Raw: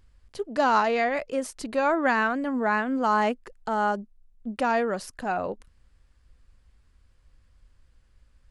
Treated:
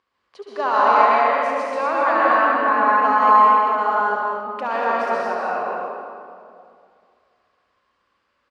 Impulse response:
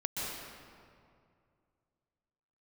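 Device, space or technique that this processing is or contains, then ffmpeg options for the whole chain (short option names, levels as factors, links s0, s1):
station announcement: -filter_complex "[0:a]highpass=430,lowpass=4100,equalizer=f=1100:t=o:w=0.21:g=11.5,aecho=1:1:69.97|242:0.501|0.501[s0];[1:a]atrim=start_sample=2205[s1];[s0][s1]afir=irnorm=-1:irlink=0,volume=0.891"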